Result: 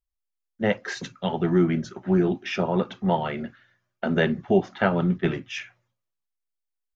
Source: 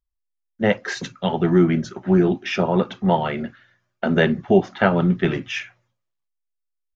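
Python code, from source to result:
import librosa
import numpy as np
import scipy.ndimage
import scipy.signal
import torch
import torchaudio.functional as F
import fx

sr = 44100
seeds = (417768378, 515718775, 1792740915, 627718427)

y = fx.band_widen(x, sr, depth_pct=100, at=(5.18, 5.58))
y = F.gain(torch.from_numpy(y), -4.5).numpy()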